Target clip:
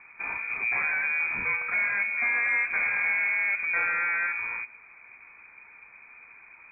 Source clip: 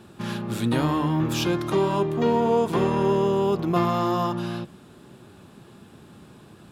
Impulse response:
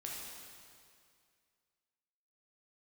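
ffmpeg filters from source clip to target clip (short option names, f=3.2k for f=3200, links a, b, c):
-af "asoftclip=type=tanh:threshold=-18dB,crystalizer=i=4.5:c=0,lowpass=f=2.2k:t=q:w=0.5098,lowpass=f=2.2k:t=q:w=0.6013,lowpass=f=2.2k:t=q:w=0.9,lowpass=f=2.2k:t=q:w=2.563,afreqshift=-2600,volume=-3dB"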